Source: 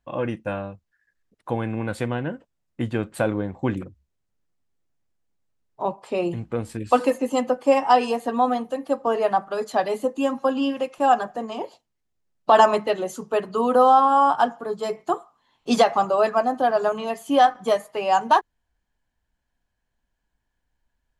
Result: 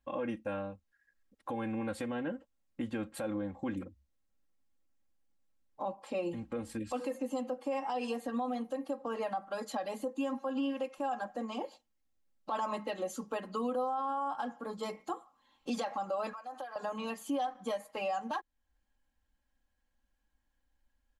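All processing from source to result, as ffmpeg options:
-filter_complex "[0:a]asettb=1/sr,asplit=3[a][b][c];[a]atrim=end=16.334[d];[b]atrim=start=16.33:end=16.76,asetpts=PTS-STARTPTS,afade=t=in:d=0.004:c=qsin,afade=t=out:st=0.426:d=0.004:c=qsin,highpass=750,acompressor=threshold=-33dB:ratio=20:attack=3.2:release=140:knee=1:detection=peak[e];[c]atrim=start=16.756[f];[d][e]acrossfade=d=0.004:c1=hsin:c2=qsin[g];[g][f]acrossfade=d=0.004:c1=qsin:c2=hsin,aecho=1:1:3.7:0.81,acompressor=threshold=-35dB:ratio=1.5,alimiter=limit=-21dB:level=0:latency=1:release=74,volume=-5.5dB"

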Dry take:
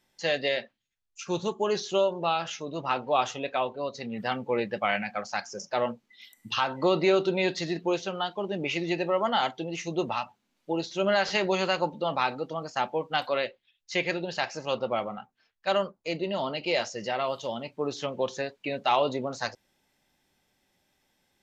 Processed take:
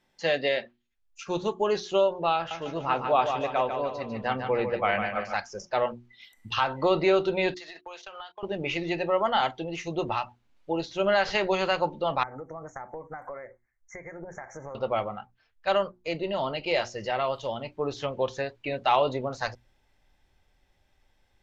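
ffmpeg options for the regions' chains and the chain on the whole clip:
-filter_complex "[0:a]asettb=1/sr,asplit=3[a][b][c];[a]atrim=end=2.364[d];[b]atrim=start=2.36:end=5.34,asetpts=PTS-STARTPTS,afade=t=in:d=0.004:c=qsin,afade=t=out:st=2.976:d=0.004:c=qsin,aemphasis=mode=reproduction:type=50fm,aecho=1:1:148|296|444|592|740|888:0.447|0.214|0.103|0.0494|0.0237|0.0114,atrim=end_sample=131418[e];[c]atrim=start=5.336[f];[d][e]acrossfade=d=0.004:c1=hsin:c2=qsin[g];[g][f]acrossfade=d=0.004:c1=qsin:c2=hsin,asettb=1/sr,asplit=3[h][i][j];[h]atrim=end=7.544[k];[i]atrim=start=7.54:end=8.43,asetpts=PTS-STARTPTS,afade=t=in:d=0.004:c=qsin,afade=t=out:st=0.886:d=0.004:c=qsin,agate=range=-23dB:threshold=-40dB:ratio=16:release=100:detection=peak,highpass=900,acompressor=threshold=-38dB:ratio=10:attack=3.2:release=140:knee=1:detection=peak[l];[j]atrim=start=8.426[m];[k][l]acrossfade=d=0.004:c1=hsin:c2=qsin[n];[n][m]acrossfade=d=0.004:c1=qsin:c2=hsin,asettb=1/sr,asplit=3[o][p][q];[o]atrim=end=12.234[r];[p]atrim=start=12.23:end=14.75,asetpts=PTS-STARTPTS,afade=t=in:d=0.004:c=qsin,afade=t=out:st=2.516:d=0.004:c=qsin,acompressor=threshold=-35dB:ratio=16:attack=3.2:release=140:knee=1:detection=peak,asuperstop=centerf=3600:order=20:qfactor=0.99[s];[q]atrim=start=14.746[t];[r][s]acrossfade=d=0.004:c1=hsin:c2=qsin[u];[u][t]acrossfade=d=0.004:c1=qsin:c2=hsin,lowpass=f=2.9k:p=1,bandreject=f=60:t=h:w=6,bandreject=f=120:t=h:w=6,bandreject=f=180:t=h:w=6,bandreject=f=240:t=h:w=6,bandreject=f=300:t=h:w=6,bandreject=f=360:t=h:w=6,asubboost=boost=9:cutoff=65,volume=2.5dB"

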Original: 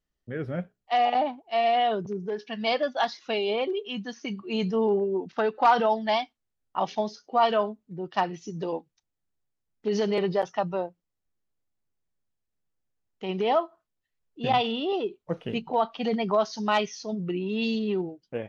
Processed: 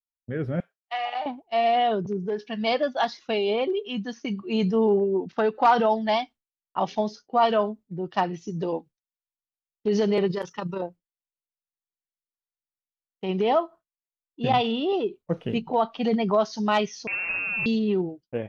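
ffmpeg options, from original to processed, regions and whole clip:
-filter_complex "[0:a]asettb=1/sr,asplit=3[a][b][c];[a]atrim=end=0.604[d];[b]atrim=start=0.6:end=1.26,asetpts=PTS-STARTPTS,afade=t=in:d=0.004:c=qsin,afade=t=out:st=0.656:d=0.004:c=qsin,acrossover=split=3100[e][f];[f]acompressor=threshold=-45dB:ratio=4:attack=1:release=60[g];[e][g]amix=inputs=2:normalize=0,highpass=1.1k,asplit=2[h][i];[i]adelay=35,volume=-12dB[j];[h][j]amix=inputs=2:normalize=0,atrim=end_sample=29106[k];[c]atrim=start=1.256[l];[d][k]acrossfade=d=0.004:c1=hsin:c2=qsin[m];[m][l]acrossfade=d=0.004:c1=qsin:c2=hsin,asettb=1/sr,asplit=3[n][o][p];[n]atrim=end=10.274[q];[o]atrim=start=10.27:end=10.82,asetpts=PTS-STARTPTS,afade=t=in:d=0.004:c=qsin,afade=t=out:st=0.546:d=0.004:c=qsin,asuperstop=centerf=690:order=4:qfactor=2.1,highshelf=f=5.3k:g=11,tremolo=f=28:d=0.571[r];[p]atrim=start=10.816[s];[q][r]acrossfade=d=0.004:c1=hsin:c2=qsin[t];[t][s]acrossfade=d=0.004:c1=qsin:c2=hsin,asettb=1/sr,asplit=3[u][v][w];[u]atrim=end=17.074[x];[v]atrim=start=17.07:end=17.66,asetpts=PTS-STARTPTS,afade=t=in:d=0.004:c=qsin,afade=t=out:st=0.586:d=0.004:c=qsin,acrusher=bits=6:dc=4:mix=0:aa=0.000001,lowpass=f=2.5k:t=q:w=0.5098,lowpass=f=2.5k:t=q:w=0.6013,lowpass=f=2.5k:t=q:w=0.9,lowpass=f=2.5k:t=q:w=2.563,afreqshift=-2900[y];[w]atrim=start=17.656[z];[x][y]acrossfade=d=0.004:c1=hsin:c2=qsin[aa];[aa][z]acrossfade=d=0.004:c1=qsin:c2=hsin,agate=range=-33dB:threshold=-41dB:ratio=3:detection=peak,lowshelf=f=430:g=5.5"

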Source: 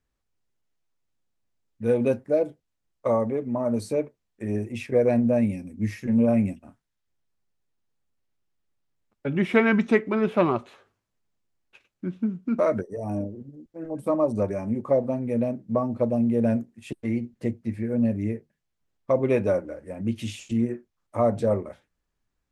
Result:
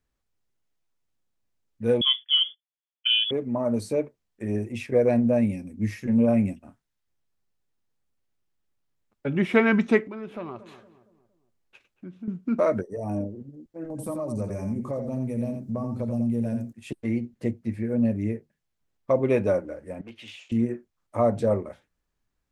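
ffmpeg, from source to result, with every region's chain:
-filter_complex "[0:a]asettb=1/sr,asplit=3[a][b][c];[a]atrim=end=2.014[d];[b]atrim=start=2.01:end=3.31,asetpts=PTS-STARTPTS,afade=t=in:d=0.004:c=qsin,afade=t=out:st=1.296:d=0.004:c=qsin,highpass=130,agate=range=-13dB:threshold=-50dB:ratio=16:release=100:detection=peak,lowpass=f=3.1k:t=q:w=0.5098,lowpass=f=3.1k:t=q:w=0.6013,lowpass=f=3.1k:t=q:w=0.9,lowpass=f=3.1k:t=q:w=2.563,afreqshift=-3600[e];[c]atrim=start=3.306[f];[d][e]acrossfade=d=0.004:c1=hsin:c2=qsin[g];[g][f]acrossfade=d=0.004:c1=qsin:c2=hsin,asettb=1/sr,asplit=3[h][i][j];[h]atrim=end=10.074[k];[i]atrim=start=10.07:end=12.28,asetpts=PTS-STARTPTS,afade=t=in:d=0.004:c=qsin,afade=t=out:st=2.206:d=0.004:c=qsin,acompressor=threshold=-44dB:ratio=2:attack=3.2:release=140:knee=1:detection=peak,asplit=2[l][m];[m]adelay=231,lowpass=f=1.1k:p=1,volume=-13dB,asplit=2[n][o];[o]adelay=231,lowpass=f=1.1k:p=1,volume=0.45,asplit=2[p][q];[q]adelay=231,lowpass=f=1.1k:p=1,volume=0.45,asplit=2[r][s];[s]adelay=231,lowpass=f=1.1k:p=1,volume=0.45[t];[l][n][p][r][t]amix=inputs=5:normalize=0,atrim=end_sample=97461[u];[j]atrim=start=12.276[v];[k][u]acrossfade=d=0.004:c1=hsin:c2=qsin[w];[w][v]acrossfade=d=0.004:c1=qsin:c2=hsin,asettb=1/sr,asplit=3[x][y][z];[x]atrim=end=13.904[aa];[y]atrim=start=13.9:end=16.73,asetpts=PTS-STARTPTS,afade=t=in:d=0.004:c=qsin,afade=t=out:st=2.826:d=0.004:c=qsin,acompressor=threshold=-37dB:ratio=2:attack=3.2:release=140:knee=1:detection=peak,bass=f=250:g=8,treble=f=4k:g=12,aecho=1:1:85:0.473,atrim=end_sample=124803[ab];[z]atrim=start=16.726[ac];[aa][ab]acrossfade=d=0.004:c1=hsin:c2=qsin[ad];[ad][ac]acrossfade=d=0.004:c1=qsin:c2=hsin,asettb=1/sr,asplit=3[ae][af][ag];[ae]atrim=end=20.014[ah];[af]atrim=start=20.01:end=20.52,asetpts=PTS-STARTPTS,afade=t=in:d=0.004:c=qsin,afade=t=out:st=0.506:d=0.004:c=qsin,acrossover=split=500 3900:gain=0.0794 1 0.141[ai][aj][ak];[ai][aj][ak]amix=inputs=3:normalize=0,asoftclip=type=hard:threshold=-36dB[al];[ag]atrim=start=20.516[am];[ah][al]acrossfade=d=0.004:c1=hsin:c2=qsin[an];[an][am]acrossfade=d=0.004:c1=qsin:c2=hsin"

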